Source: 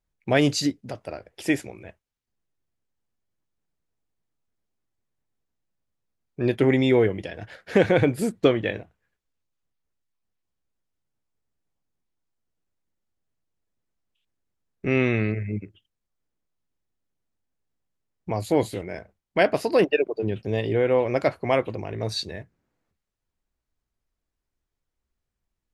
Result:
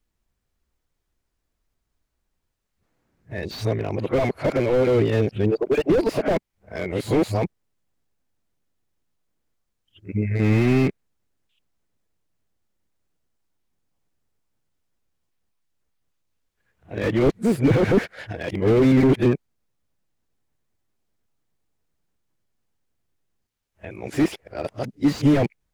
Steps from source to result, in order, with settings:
played backwards from end to start
dynamic equaliser 2,200 Hz, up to +5 dB, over −45 dBFS, Q 3
slew-rate limiting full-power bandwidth 37 Hz
level +6 dB

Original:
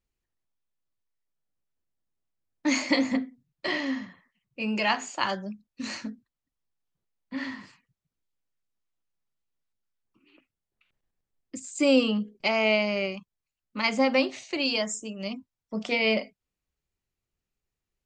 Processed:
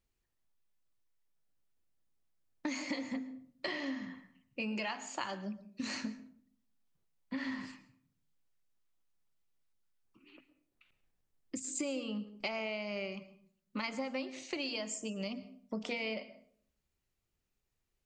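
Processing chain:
downward compressor 10 to 1, threshold −36 dBFS, peak gain reduction 20 dB
on a send: convolution reverb RT60 0.55 s, pre-delay 104 ms, DRR 15 dB
on the sum: level +1 dB

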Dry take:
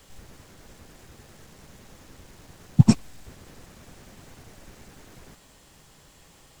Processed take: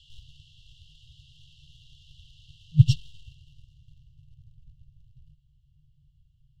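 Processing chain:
low-pass filter sweep 3,200 Hz → 820 Hz, 0:03.07–0:04.44
leveller curve on the samples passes 1
brick-wall band-stop 160–2,700 Hz

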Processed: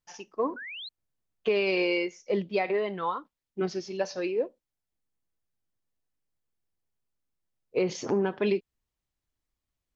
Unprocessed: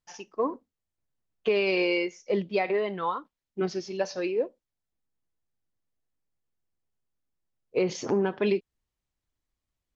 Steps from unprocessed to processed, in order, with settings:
sound drawn into the spectrogram rise, 0:00.56–0:00.89, 1,400–4,300 Hz −39 dBFS
level −1 dB

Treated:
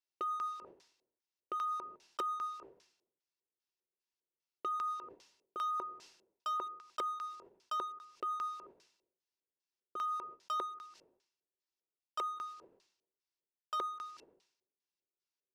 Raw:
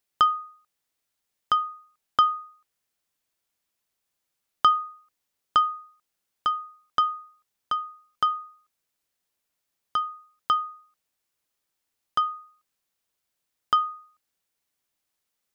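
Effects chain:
auto-filter low-pass square 2.5 Hz 490–5,300 Hz
noise gate with hold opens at −52 dBFS
reversed playback
downward compressor 5 to 1, threshold −34 dBFS, peak gain reduction 17 dB
reversed playback
leveller curve on the samples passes 1
parametric band 1,100 Hz −2 dB
hard clipping −30 dBFS, distortion −15 dB
brickwall limiter −39.5 dBFS, peak gain reduction 9.5 dB
low-shelf EQ 130 Hz −10.5 dB
hollow resonant body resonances 370/950/2,700 Hz, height 11 dB, ringing for 55 ms
level that may fall only so fast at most 85 dB per second
level +6.5 dB

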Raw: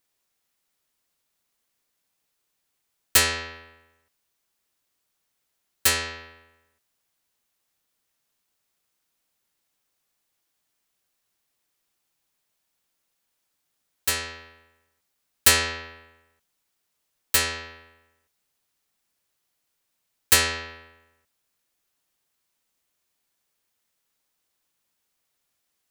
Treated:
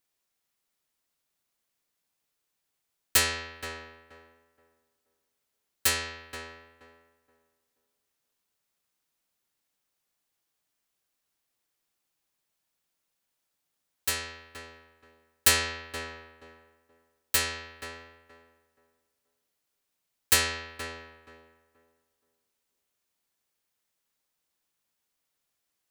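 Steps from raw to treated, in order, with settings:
tape delay 476 ms, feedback 27%, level −6 dB, low-pass 1,200 Hz
level −4.5 dB

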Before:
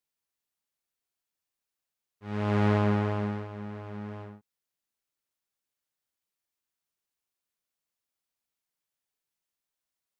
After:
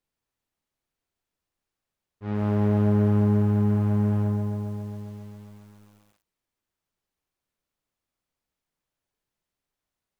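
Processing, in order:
spectral tilt −2.5 dB per octave
mains-hum notches 50/100/150/200 Hz
downward compressor 6 to 1, threshold −30 dBFS, peak gain reduction 13.5 dB
on a send: feedback echo with a high-pass in the loop 140 ms, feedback 60%, high-pass 300 Hz, level −8.5 dB
on the sum: feedback echo at a low word length 135 ms, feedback 80%, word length 10 bits, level −7.5 dB
level +5 dB

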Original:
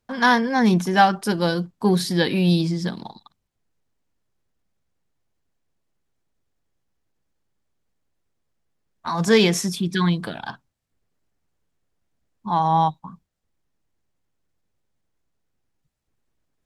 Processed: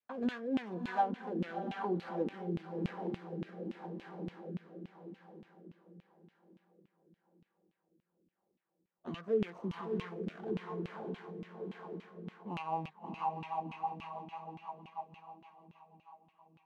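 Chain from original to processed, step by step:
running median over 25 samples
feedback delay with all-pass diffusion 650 ms, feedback 45%, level −6 dB
rotating-speaker cabinet horn 0.9 Hz, later 6.3 Hz, at 0:11.86
downward compressor 3 to 1, threshold −35 dBFS, peak gain reduction 16.5 dB
auto-filter band-pass saw down 3.5 Hz 220–2,900 Hz
pitch vibrato 0.35 Hz 6.5 cents
level +6 dB

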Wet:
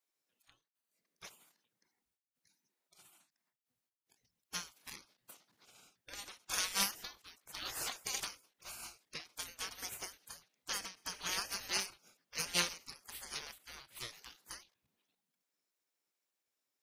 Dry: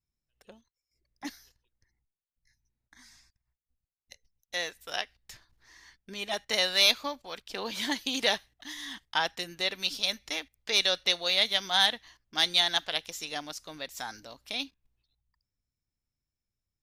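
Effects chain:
gate on every frequency bin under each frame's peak −20 dB weak
every ending faded ahead of time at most 180 dB per second
level +6 dB

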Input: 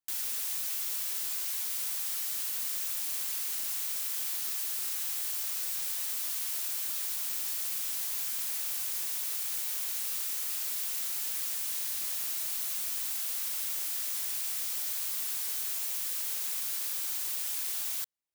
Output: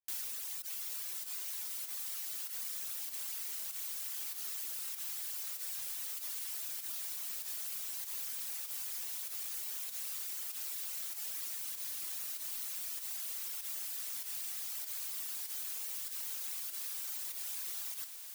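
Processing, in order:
fake sidechain pumping 97 BPM, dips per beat 1, −13 dB, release 60 ms
reverb reduction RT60 1.5 s
feedback delay with all-pass diffusion 767 ms, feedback 63%, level −8 dB
level −4.5 dB

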